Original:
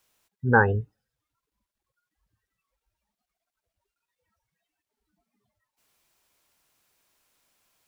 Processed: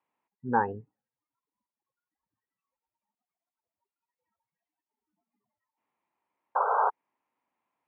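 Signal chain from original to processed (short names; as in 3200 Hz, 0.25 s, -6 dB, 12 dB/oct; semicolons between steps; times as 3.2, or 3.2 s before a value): painted sound noise, 6.55–6.9, 400–1600 Hz -19 dBFS; speaker cabinet 200–2100 Hz, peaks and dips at 260 Hz +4 dB, 430 Hz -3 dB, 620 Hz -4 dB, 910 Hz +8 dB, 1500 Hz -9 dB; gain -6.5 dB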